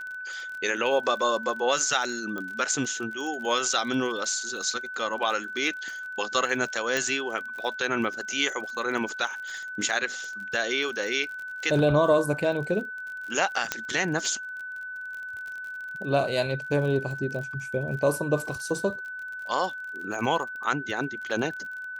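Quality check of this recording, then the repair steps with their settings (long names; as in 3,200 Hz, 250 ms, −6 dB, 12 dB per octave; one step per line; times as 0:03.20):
surface crackle 41 per second −35 dBFS
whistle 1,500 Hz −34 dBFS
0:02.38: click −21 dBFS
0:06.97: click
0:13.72: click −9 dBFS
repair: click removal
notch filter 1,500 Hz, Q 30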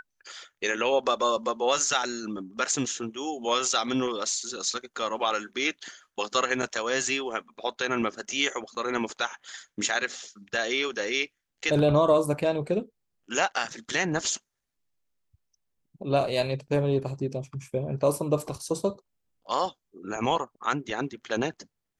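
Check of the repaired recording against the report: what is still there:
0:13.72: click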